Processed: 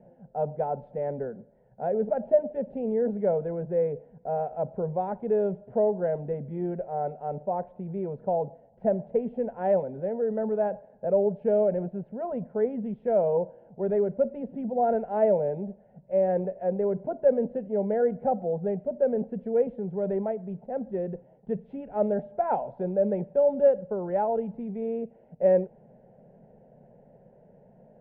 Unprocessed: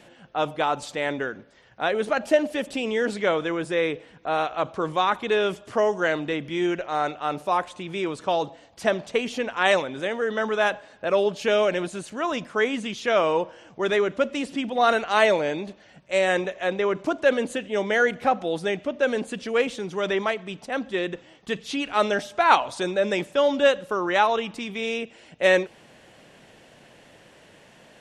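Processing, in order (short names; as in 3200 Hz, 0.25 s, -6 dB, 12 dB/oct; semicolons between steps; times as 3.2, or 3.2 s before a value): LPF 1100 Hz 24 dB/oct; low shelf 340 Hz +7 dB; fixed phaser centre 310 Hz, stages 6; gain -2.5 dB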